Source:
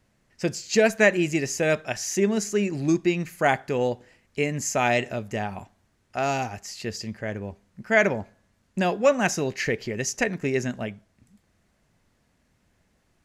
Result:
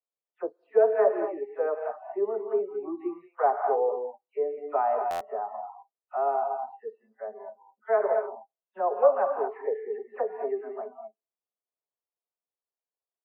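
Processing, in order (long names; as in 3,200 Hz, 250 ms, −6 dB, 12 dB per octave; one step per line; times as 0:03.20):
every frequency bin delayed by itself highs early, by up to 182 ms
elliptic band-pass filter 410–1,200 Hz, stop band 70 dB
reverb whose tail is shaped and stops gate 260 ms rising, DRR 4 dB
noise reduction from a noise print of the clip's start 29 dB
buffer that repeats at 0:05.10, samples 512, times 8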